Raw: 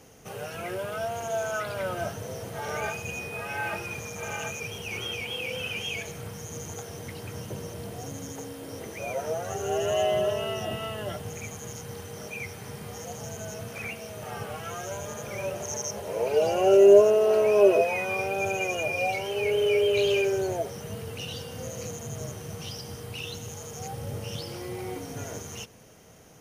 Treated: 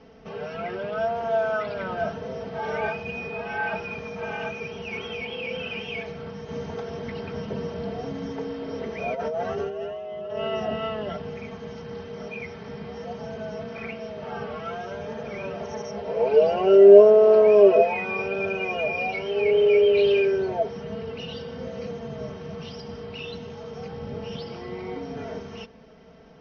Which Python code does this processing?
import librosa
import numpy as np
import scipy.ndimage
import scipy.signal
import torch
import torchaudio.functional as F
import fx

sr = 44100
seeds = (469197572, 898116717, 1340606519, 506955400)

y = fx.over_compress(x, sr, threshold_db=-33.0, ratio=-1.0, at=(6.48, 10.55))
y = scipy.signal.sosfilt(scipy.signal.butter(16, 5600.0, 'lowpass', fs=sr, output='sos'), y)
y = fx.high_shelf(y, sr, hz=3000.0, db=-11.0)
y = y + 0.76 * np.pad(y, (int(4.5 * sr / 1000.0), 0))[:len(y)]
y = F.gain(torch.from_numpy(y), 2.0).numpy()